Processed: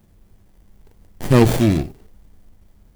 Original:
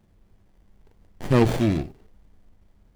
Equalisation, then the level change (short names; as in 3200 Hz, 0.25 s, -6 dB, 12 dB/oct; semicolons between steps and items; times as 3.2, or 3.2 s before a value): low shelf 330 Hz +2.5 dB; high shelf 7000 Hz +12 dB; +4.0 dB